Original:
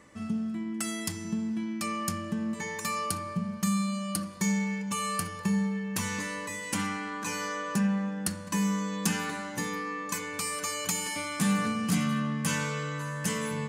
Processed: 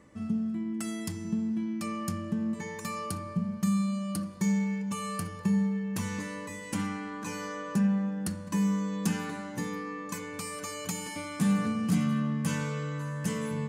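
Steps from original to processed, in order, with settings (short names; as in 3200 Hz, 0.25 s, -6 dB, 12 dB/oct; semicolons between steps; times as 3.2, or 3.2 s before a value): tilt shelf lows +4.5 dB, about 680 Hz; gain -2.5 dB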